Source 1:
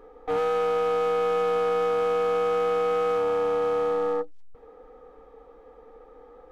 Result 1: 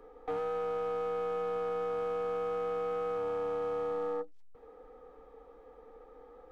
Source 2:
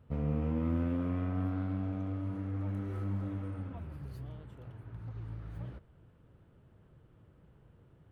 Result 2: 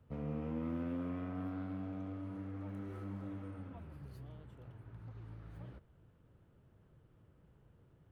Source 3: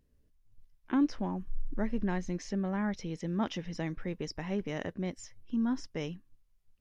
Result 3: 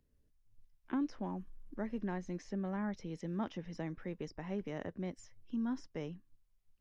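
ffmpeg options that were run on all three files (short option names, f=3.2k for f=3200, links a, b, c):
-filter_complex "[0:a]acrossover=split=150|1700[a][b][c];[a]acompressor=threshold=-46dB:ratio=4[d];[b]acompressor=threshold=-28dB:ratio=4[e];[c]acompressor=threshold=-53dB:ratio=4[f];[d][e][f]amix=inputs=3:normalize=0,volume=-4.5dB"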